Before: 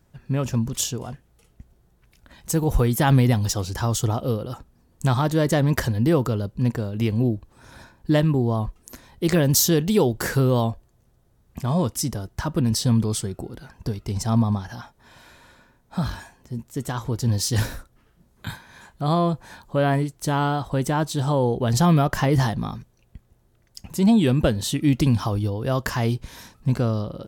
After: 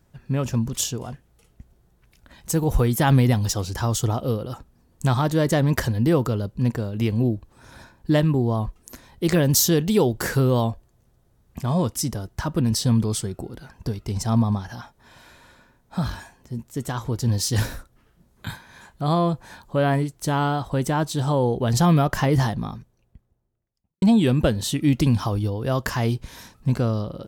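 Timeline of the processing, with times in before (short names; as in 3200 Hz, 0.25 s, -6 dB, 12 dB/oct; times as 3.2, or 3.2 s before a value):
22.24–24.02 studio fade out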